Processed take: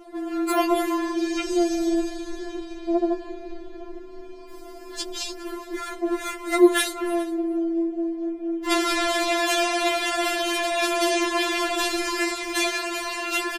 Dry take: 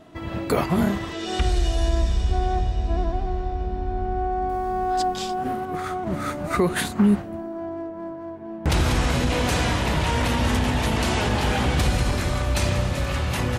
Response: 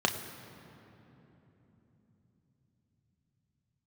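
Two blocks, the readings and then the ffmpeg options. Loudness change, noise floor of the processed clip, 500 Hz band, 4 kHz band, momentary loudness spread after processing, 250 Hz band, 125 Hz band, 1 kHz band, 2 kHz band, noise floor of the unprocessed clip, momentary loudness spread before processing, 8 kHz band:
0.0 dB, -40 dBFS, +2.0 dB, +2.5 dB, 16 LU, +1.0 dB, under -35 dB, -2.0 dB, +2.5 dB, -34 dBFS, 8 LU, +3.0 dB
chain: -af "aecho=1:1:412:0.0891,afftfilt=real='re*4*eq(mod(b,16),0)':imag='im*4*eq(mod(b,16),0)':win_size=2048:overlap=0.75,volume=5.5dB"

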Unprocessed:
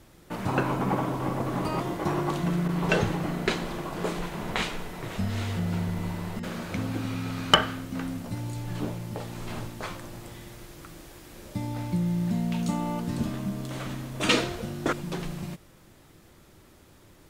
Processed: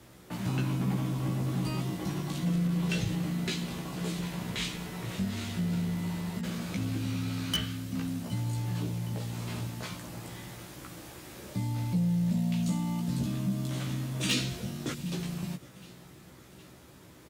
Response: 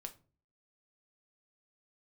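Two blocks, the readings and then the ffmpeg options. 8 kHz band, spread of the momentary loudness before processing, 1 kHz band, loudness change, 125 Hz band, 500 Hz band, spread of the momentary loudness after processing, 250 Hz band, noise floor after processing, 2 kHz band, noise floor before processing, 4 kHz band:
0.0 dB, 14 LU, -11.5 dB, -3.0 dB, 0.0 dB, -10.0 dB, 15 LU, -1.5 dB, -53 dBFS, -8.0 dB, -55 dBFS, -5.5 dB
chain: -filter_complex "[0:a]highpass=71,acrossover=split=260|2500[a][b][c];[b]acompressor=threshold=-45dB:ratio=6[d];[a][d][c]amix=inputs=3:normalize=0,asoftclip=type=tanh:threshold=-24dB,asplit=2[e][f];[f]adelay=16,volume=-3dB[g];[e][g]amix=inputs=2:normalize=0,aecho=1:1:764|1528|2292|3056:0.0794|0.0437|0.024|0.0132"

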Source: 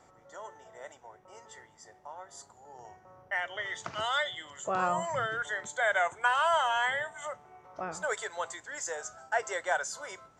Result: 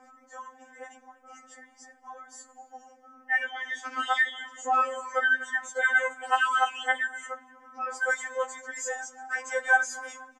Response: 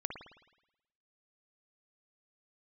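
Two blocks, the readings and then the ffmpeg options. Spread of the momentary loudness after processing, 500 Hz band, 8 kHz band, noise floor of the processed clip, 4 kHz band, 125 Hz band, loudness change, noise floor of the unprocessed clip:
22 LU, -1.0 dB, +1.0 dB, -60 dBFS, -1.0 dB, under -30 dB, +4.0 dB, -61 dBFS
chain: -filter_complex "[0:a]equalizer=f=250:t=o:w=0.33:g=6,equalizer=f=400:t=o:w=0.33:g=3,equalizer=f=800:t=o:w=0.33:g=4,equalizer=f=1.6k:t=o:w=0.33:g=7,equalizer=f=4k:t=o:w=0.33:g=-10,asplit=2[a][b];[b]adelay=240,lowpass=f=3k:p=1,volume=-22dB,asplit=2[c][d];[d]adelay=240,lowpass=f=3k:p=1,volume=0.49,asplit=2[e][f];[f]adelay=240,lowpass=f=3k:p=1,volume=0.49[g];[a][c][e][g]amix=inputs=4:normalize=0,afftfilt=real='re*3.46*eq(mod(b,12),0)':imag='im*3.46*eq(mod(b,12),0)':win_size=2048:overlap=0.75,volume=4dB"

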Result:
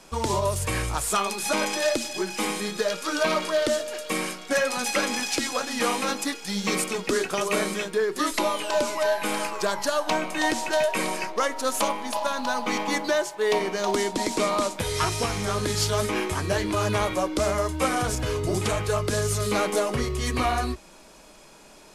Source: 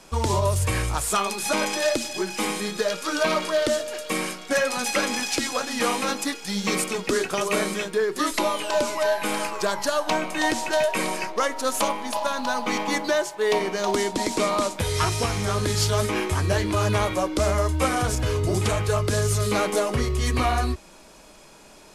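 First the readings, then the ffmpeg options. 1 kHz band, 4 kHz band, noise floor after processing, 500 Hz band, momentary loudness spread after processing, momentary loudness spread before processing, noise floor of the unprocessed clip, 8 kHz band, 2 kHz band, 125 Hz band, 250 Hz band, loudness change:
-1.0 dB, -1.0 dB, -50 dBFS, -1.0 dB, 3 LU, 4 LU, -49 dBFS, -1.0 dB, -1.0 dB, -5.0 dB, -1.0 dB, -1.5 dB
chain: -af "equalizer=f=83:t=o:w=0.62:g=-8,volume=-1dB"

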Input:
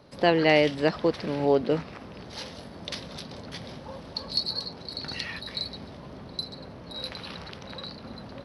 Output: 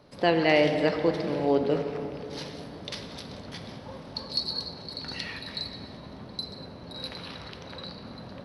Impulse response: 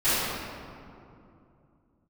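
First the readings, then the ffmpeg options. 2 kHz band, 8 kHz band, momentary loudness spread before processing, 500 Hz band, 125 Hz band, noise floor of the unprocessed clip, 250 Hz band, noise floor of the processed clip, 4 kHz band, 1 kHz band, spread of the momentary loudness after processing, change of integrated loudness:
-1.0 dB, -2.0 dB, 19 LU, -0.5 dB, -1.0 dB, -44 dBFS, 0.0 dB, -45 dBFS, -1.5 dB, -1.0 dB, 17 LU, -1.0 dB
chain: -filter_complex "[0:a]asplit=2[a][b];[1:a]atrim=start_sample=2205,asetrate=36162,aresample=44100[c];[b][c]afir=irnorm=-1:irlink=0,volume=-23.5dB[d];[a][d]amix=inputs=2:normalize=0,volume=-2.5dB"

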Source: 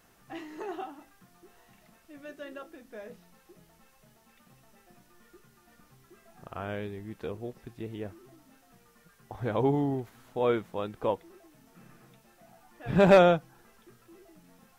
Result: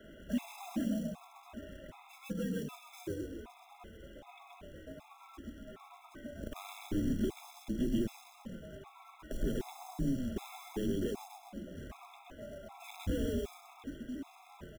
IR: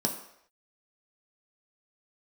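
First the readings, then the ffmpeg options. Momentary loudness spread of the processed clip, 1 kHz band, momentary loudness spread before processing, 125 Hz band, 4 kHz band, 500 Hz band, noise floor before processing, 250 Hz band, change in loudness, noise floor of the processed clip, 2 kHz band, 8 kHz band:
18 LU, -15.5 dB, 24 LU, -6.5 dB, -5.5 dB, -13.5 dB, -63 dBFS, -2.0 dB, -11.5 dB, -59 dBFS, -12.5 dB, n/a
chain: -filter_complex "[0:a]bandreject=f=1.8k:w=7.2,afreqshift=-83,acompressor=threshold=-31dB:ratio=10,asplit=6[a][b][c][d][e][f];[b]adelay=128,afreqshift=-32,volume=-5dB[g];[c]adelay=256,afreqshift=-64,volume=-12.1dB[h];[d]adelay=384,afreqshift=-96,volume=-19.3dB[i];[e]adelay=512,afreqshift=-128,volume=-26.4dB[j];[f]adelay=640,afreqshift=-160,volume=-33.5dB[k];[a][g][h][i][j][k]amix=inputs=6:normalize=0,aresample=8000,asoftclip=type=hard:threshold=-37.5dB,aresample=44100,acrusher=bits=4:mode=log:mix=0:aa=0.000001,acrossover=split=290|3000[l][m][n];[m]acompressor=threshold=-57dB:ratio=4[o];[l][o][n]amix=inputs=3:normalize=0,asplit=2[p][q];[1:a]atrim=start_sample=2205[r];[q][r]afir=irnorm=-1:irlink=0,volume=-14dB[s];[p][s]amix=inputs=2:normalize=0,afftfilt=real='re*gt(sin(2*PI*1.3*pts/sr)*(1-2*mod(floor(b*sr/1024/680),2)),0)':imag='im*gt(sin(2*PI*1.3*pts/sr)*(1-2*mod(floor(b*sr/1024/680),2)),0)':win_size=1024:overlap=0.75,volume=9dB"

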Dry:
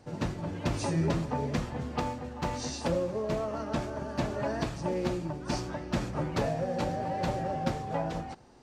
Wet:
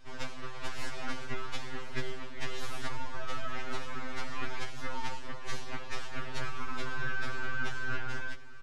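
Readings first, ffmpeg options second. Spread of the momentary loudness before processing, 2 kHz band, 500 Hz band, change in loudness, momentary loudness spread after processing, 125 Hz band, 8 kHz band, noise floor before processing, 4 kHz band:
5 LU, +5.5 dB, -13.0 dB, -7.0 dB, 6 LU, -11.5 dB, -5.0 dB, -42 dBFS, 0.0 dB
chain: -af "highpass=660,highshelf=f=5.9k:g=7,acompressor=threshold=-36dB:ratio=6,aeval=exprs='abs(val(0))':c=same,adynamicsmooth=sensitivity=3.5:basefreq=4.8k,aecho=1:1:1071:0.133,afftfilt=real='re*2.45*eq(mod(b,6),0)':imag='im*2.45*eq(mod(b,6),0)':win_size=2048:overlap=0.75,volume=9dB"

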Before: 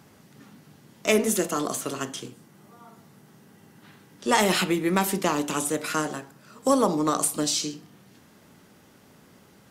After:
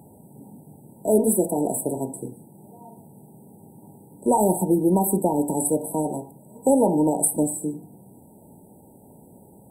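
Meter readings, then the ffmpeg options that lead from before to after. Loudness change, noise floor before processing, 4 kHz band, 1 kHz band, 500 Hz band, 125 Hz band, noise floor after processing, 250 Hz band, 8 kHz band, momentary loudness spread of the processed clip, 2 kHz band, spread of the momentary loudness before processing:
+2.5 dB, -56 dBFS, under -40 dB, +0.5 dB, +4.0 dB, +5.0 dB, -51 dBFS, +4.5 dB, +1.5 dB, 13 LU, under -40 dB, 12 LU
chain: -filter_complex "[0:a]asplit=2[a][b];[b]alimiter=limit=-16.5dB:level=0:latency=1:release=211,volume=0dB[c];[a][c]amix=inputs=2:normalize=0,afftfilt=real='re*(1-between(b*sr/4096,960,7700))':imag='im*(1-between(b*sr/4096,960,7700))':win_size=4096:overlap=0.75"

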